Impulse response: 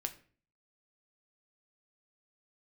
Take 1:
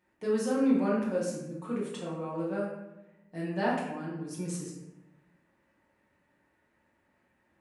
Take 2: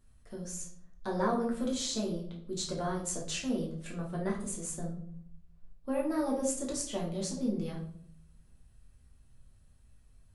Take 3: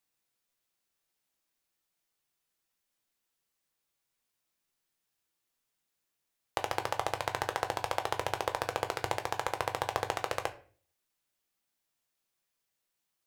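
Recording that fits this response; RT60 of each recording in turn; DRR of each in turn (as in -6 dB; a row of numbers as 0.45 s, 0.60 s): 3; 0.95 s, 0.65 s, 0.45 s; -6.5 dB, -3.5 dB, 6.0 dB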